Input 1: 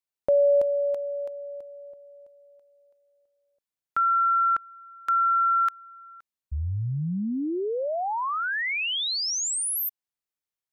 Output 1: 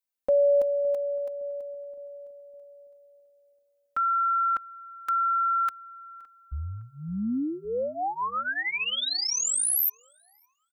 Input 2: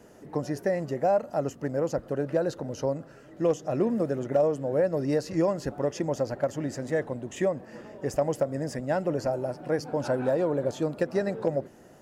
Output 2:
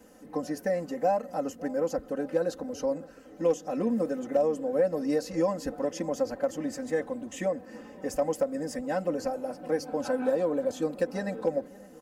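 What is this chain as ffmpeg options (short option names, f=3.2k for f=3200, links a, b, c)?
-filter_complex "[0:a]highshelf=f=8.8k:g=8,aecho=1:1:3.9:0.97,asplit=2[a][b];[b]adelay=563,lowpass=f=1.2k:p=1,volume=-19dB,asplit=2[c][d];[d]adelay=563,lowpass=f=1.2k:p=1,volume=0.53,asplit=2[e][f];[f]adelay=563,lowpass=f=1.2k:p=1,volume=0.53,asplit=2[g][h];[h]adelay=563,lowpass=f=1.2k:p=1,volume=0.53[i];[c][e][g][i]amix=inputs=4:normalize=0[j];[a][j]amix=inputs=2:normalize=0,volume=-5dB"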